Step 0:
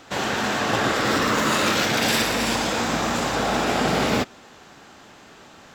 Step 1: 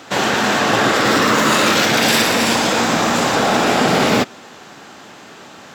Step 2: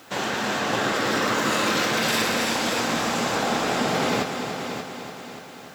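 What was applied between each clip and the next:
high-pass 120 Hz 12 dB/octave; in parallel at -3 dB: peak limiter -15.5 dBFS, peak gain reduction 8 dB; on the sum: trim +3.5 dB
on a send: multi-head delay 291 ms, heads first and second, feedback 51%, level -10 dB; on the sum: added noise white -48 dBFS; feedback comb 520 Hz, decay 0.62 s, mix 60%; trim -2 dB

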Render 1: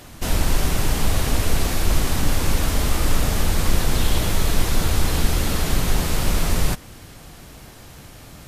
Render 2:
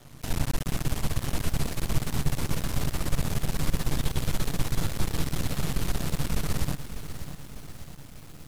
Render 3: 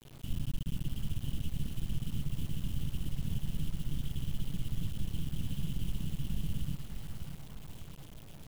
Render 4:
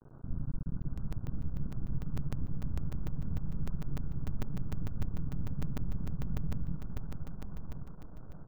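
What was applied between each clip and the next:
peaking EQ 140 Hz +11.5 dB 0.61 oct; half-wave rectifier; bit-crushed delay 598 ms, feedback 55%, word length 6-bit, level -11 dB; trim -7 dB
FFT filter 200 Hz 0 dB, 830 Hz -26 dB, 2 kHz -30 dB, 3 kHz +1 dB, 4.4 kHz -21 dB, 12 kHz -11 dB; peak limiter -19 dBFS, peak gain reduction 7 dB; word length cut 8-bit, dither none; trim -4 dB
Chebyshev low-pass 1.5 kHz, order 6; delay 1081 ms -7.5 dB; crackling interface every 0.15 s, samples 256, zero, from 0.82 s

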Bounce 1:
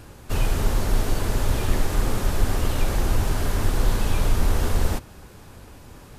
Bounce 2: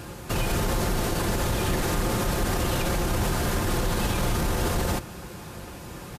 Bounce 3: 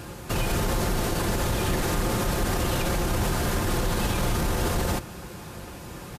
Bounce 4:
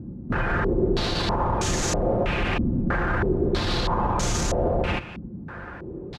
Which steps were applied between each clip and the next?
high-pass 56 Hz 12 dB/octave; comb 5.7 ms, depth 39%; peak limiter -23 dBFS, peak gain reduction 9.5 dB; trim +6.5 dB
no audible change
step-sequenced low-pass 3.1 Hz 240–6600 Hz

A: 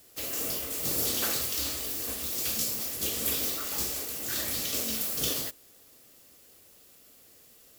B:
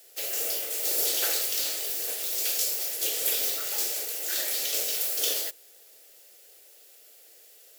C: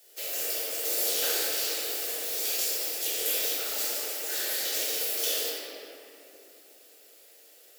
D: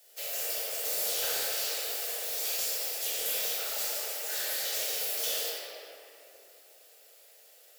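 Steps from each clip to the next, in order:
inverse Chebyshev high-pass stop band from 200 Hz, stop band 40 dB; peaking EQ 1.1 kHz -12.5 dB 0.36 oct; trim +3 dB
simulated room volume 140 m³, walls hard, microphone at 0.87 m; trim -5.5 dB
octave divider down 2 oct, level +3 dB; ladder high-pass 440 Hz, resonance 25%; hard clipper -30.5 dBFS, distortion -16 dB; trim +4 dB

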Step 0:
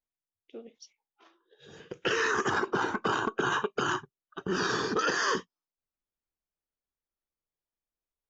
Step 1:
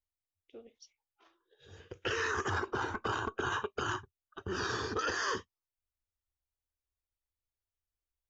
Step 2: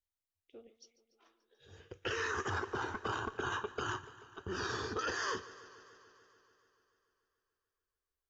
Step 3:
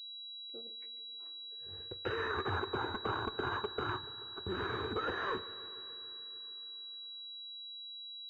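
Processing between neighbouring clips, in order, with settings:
resonant low shelf 120 Hz +10 dB, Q 3; trim -5.5 dB
modulated delay 145 ms, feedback 74%, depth 54 cents, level -18 dB; trim -3 dB
Schroeder reverb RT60 3.9 s, combs from 30 ms, DRR 19.5 dB; class-D stage that switches slowly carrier 3.9 kHz; trim +2 dB

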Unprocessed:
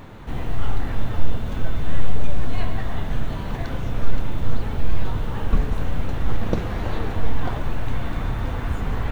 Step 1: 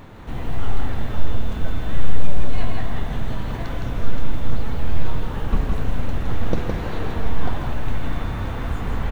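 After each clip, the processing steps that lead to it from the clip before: delay 163 ms -4 dB; trim -1 dB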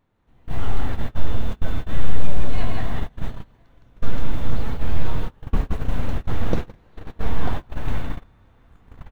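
gate -17 dBFS, range -28 dB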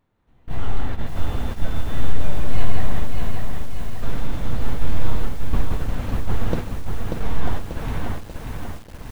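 bit-crushed delay 588 ms, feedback 55%, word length 7-bit, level -4 dB; trim -1 dB

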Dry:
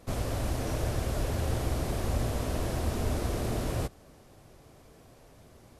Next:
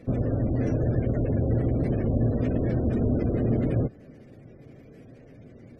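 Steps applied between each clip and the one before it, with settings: spectral gate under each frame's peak -25 dB strong; ten-band graphic EQ 125 Hz +10 dB, 250 Hz +11 dB, 500 Hz +8 dB, 1 kHz -11 dB, 2 kHz +12 dB; trim -2 dB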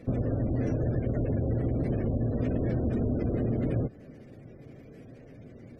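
compression, threshold -24 dBFS, peak gain reduction 6.5 dB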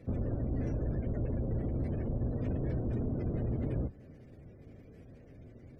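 octave divider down 1 oct, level +1 dB; saturation -16.5 dBFS, distortion -23 dB; trim -7 dB

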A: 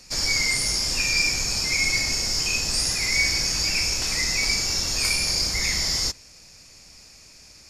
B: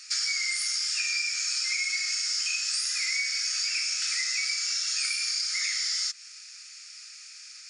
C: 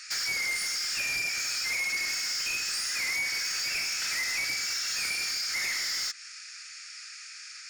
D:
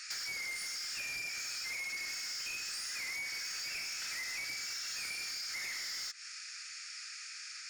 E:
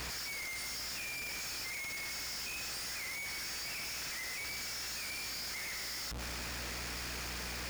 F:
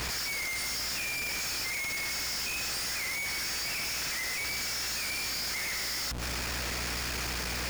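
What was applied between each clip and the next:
FFT band-pass 1.2–10 kHz; compression 10:1, threshold -29 dBFS, peak gain reduction 12 dB; trim +3.5 dB
peaking EQ 1.6 kHz +10 dB 1.2 oct; saturation -27 dBFS, distortion -10 dB
compression, threshold -37 dBFS, peak gain reduction 8 dB; trim -2 dB
hum 60 Hz, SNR 14 dB; Schmitt trigger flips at -48.5 dBFS
bit crusher 7-bit; trim +2.5 dB

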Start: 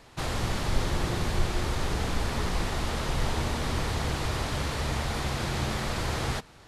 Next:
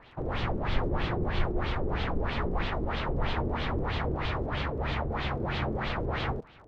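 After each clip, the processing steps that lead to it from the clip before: LFO low-pass sine 3.1 Hz 380–3500 Hz; crackle 49 per s -47 dBFS; Bessel low-pass 4.5 kHz, order 2; trim -2 dB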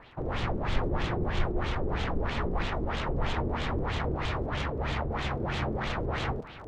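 self-modulated delay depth 0.13 ms; reverse; upward compressor, threshold -35 dBFS; reverse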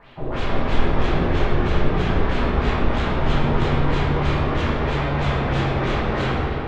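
reverberation RT60 3.1 s, pre-delay 5 ms, DRR -8 dB

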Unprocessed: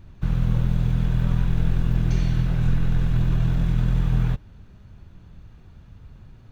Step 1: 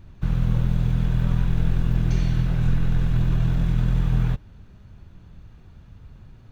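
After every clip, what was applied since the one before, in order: no audible change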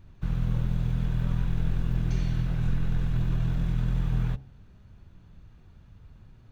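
de-hum 66.85 Hz, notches 13; trim -5.5 dB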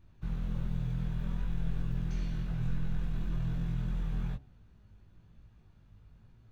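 chorus 1.1 Hz, delay 17.5 ms, depth 2.2 ms; trim -4 dB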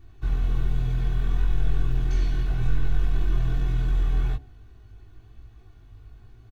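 comb 2.7 ms, depth 98%; trim +6.5 dB

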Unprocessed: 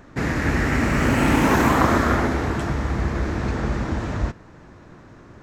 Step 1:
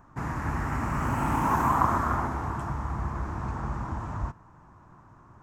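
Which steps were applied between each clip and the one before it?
graphic EQ 125/250/500/1000/2000/4000 Hz +3/-3/-9/+12/-7/-11 dB; trim -8.5 dB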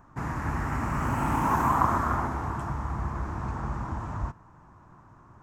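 no audible change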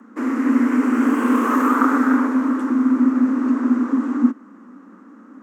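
resonant low shelf 110 Hz +10.5 dB, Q 1.5; frequency shift +190 Hz; trim +4 dB

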